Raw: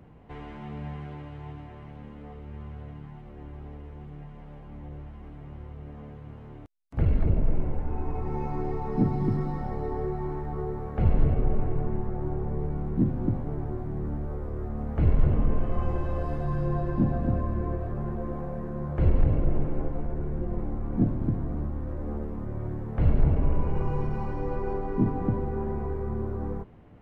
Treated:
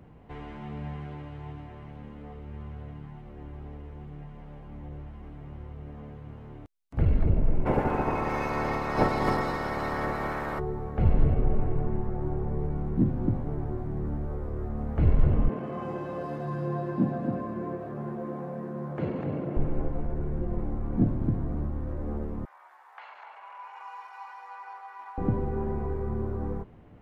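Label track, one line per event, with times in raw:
7.650000	10.580000	spectral peaks clipped ceiling under each frame's peak by 29 dB
15.490000	19.570000	high-pass 150 Hz 24 dB/octave
22.450000	25.180000	Chebyshev high-pass 860 Hz, order 4

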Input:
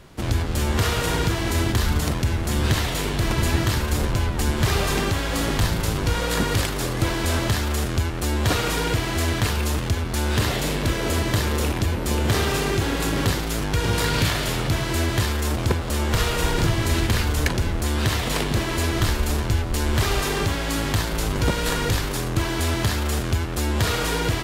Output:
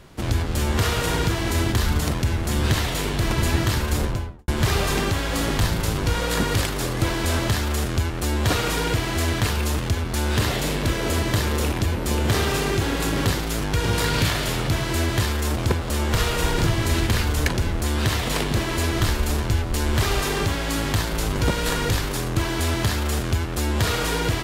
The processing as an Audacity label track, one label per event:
3.970000	4.480000	studio fade out

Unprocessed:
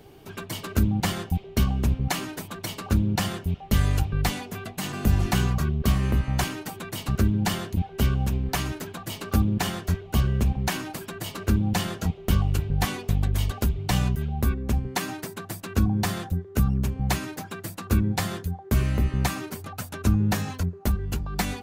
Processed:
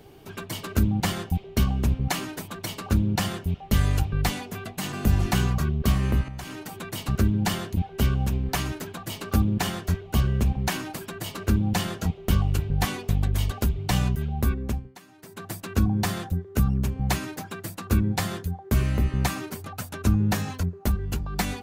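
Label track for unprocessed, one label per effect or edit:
6.230000	6.780000	compression 8:1, threshold -32 dBFS
14.650000	15.450000	dip -21 dB, fades 0.36 s quadratic

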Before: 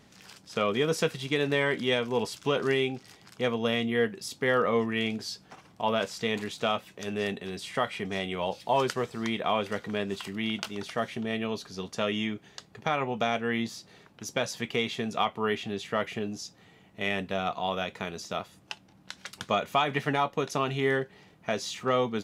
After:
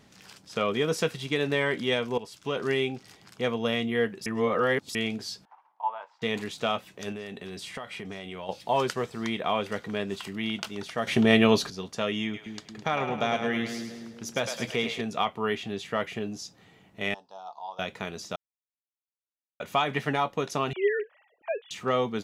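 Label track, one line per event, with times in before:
2.180000	2.780000	fade in linear, from -13 dB
4.260000	4.950000	reverse
5.450000	6.220000	ladder band-pass 950 Hz, resonance 80%
7.120000	8.490000	compression 5:1, threshold -34 dBFS
11.070000	11.700000	gain +12 dB
12.230000	15.010000	two-band feedback delay split 470 Hz, lows 230 ms, highs 105 ms, level -7 dB
17.140000	17.790000	two resonant band-passes 2.1 kHz, apart 2.5 oct
18.360000	19.600000	mute
20.730000	21.710000	formants replaced by sine waves

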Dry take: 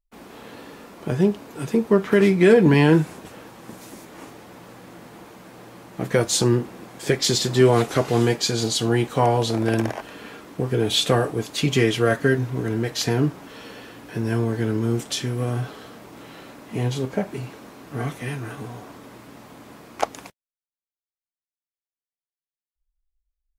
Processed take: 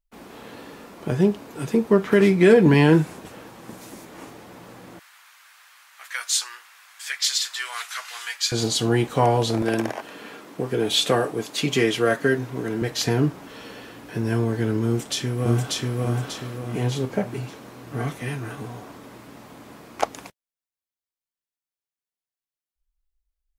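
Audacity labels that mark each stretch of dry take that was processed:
4.990000	8.520000	high-pass 1.3 kHz 24 dB/octave
9.620000	12.820000	Bessel high-pass 200 Hz
14.860000	15.990000	echo throw 590 ms, feedback 40%, level -0.5 dB

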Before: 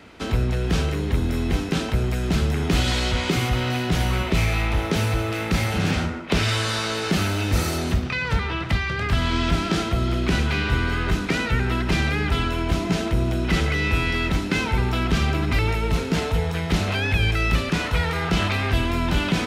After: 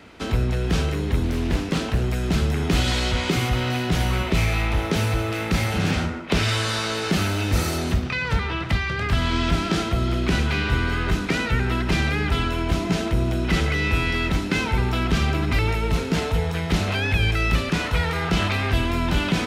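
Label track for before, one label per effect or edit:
1.230000	2.030000	loudspeaker Doppler distortion depth 0.55 ms

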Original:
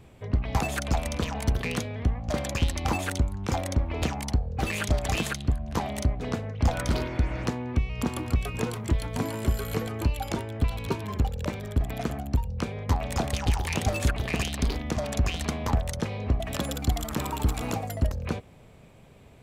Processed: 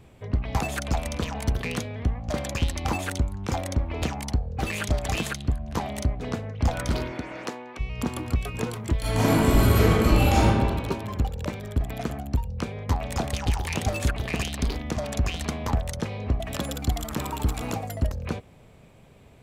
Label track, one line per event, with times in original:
7.110000	7.790000	high-pass 170 Hz -> 620 Hz
9.010000	10.480000	reverb throw, RT60 1.7 s, DRR -11 dB

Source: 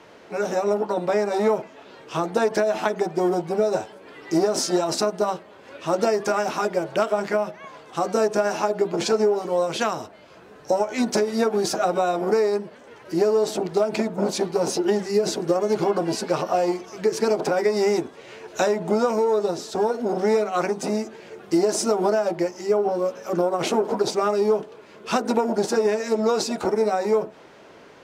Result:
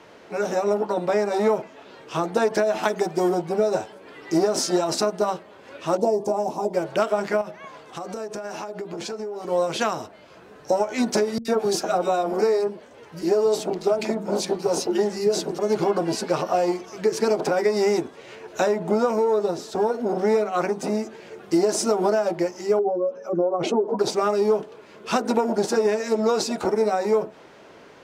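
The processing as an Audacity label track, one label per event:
2.830000	3.320000	treble shelf 4 kHz +7 dB
5.970000	6.740000	FFT filter 940 Hz 0 dB, 1.4 kHz -27 dB, 7.4 kHz -6 dB
7.410000	9.480000	compression, threshold -29 dBFS
11.380000	15.590000	three bands offset in time lows, highs, mids 70/100 ms, splits 170/1700 Hz
18.350000	21.030000	peaking EQ 6.3 kHz -3.5 dB 2.4 oct
22.790000	23.990000	spectral contrast enhancement exponent 1.6

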